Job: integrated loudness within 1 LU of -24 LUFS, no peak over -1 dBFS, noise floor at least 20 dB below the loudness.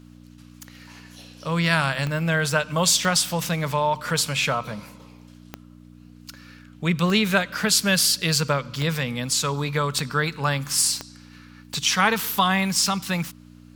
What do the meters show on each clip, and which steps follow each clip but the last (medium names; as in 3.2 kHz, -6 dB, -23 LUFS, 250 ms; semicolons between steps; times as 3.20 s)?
clicks found 8; hum 60 Hz; highest harmonic 300 Hz; hum level -45 dBFS; loudness -22.0 LUFS; peak level -4.0 dBFS; loudness target -24.0 LUFS
-> de-click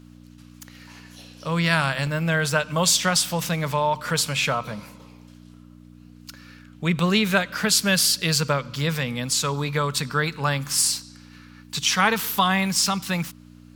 clicks found 0; hum 60 Hz; highest harmonic 300 Hz; hum level -45 dBFS
-> de-hum 60 Hz, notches 5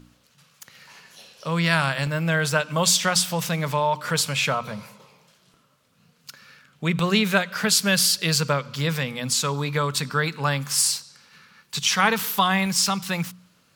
hum not found; loudness -22.0 LUFS; peak level -4.5 dBFS; loudness target -24.0 LUFS
-> trim -2 dB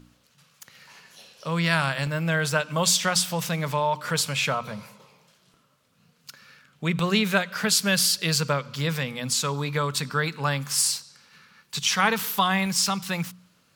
loudness -24.0 LUFS; peak level -6.5 dBFS; noise floor -64 dBFS